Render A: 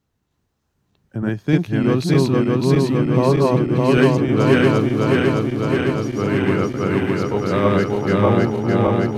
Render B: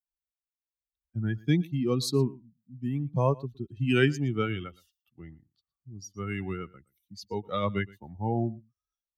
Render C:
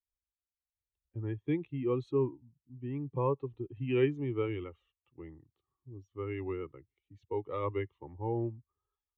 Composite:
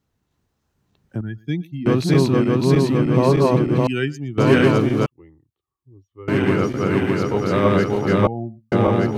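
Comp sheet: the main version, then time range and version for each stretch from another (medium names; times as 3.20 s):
A
1.21–1.86 s: from B
3.87–4.38 s: from B
5.06–6.28 s: from C
8.27–8.72 s: from B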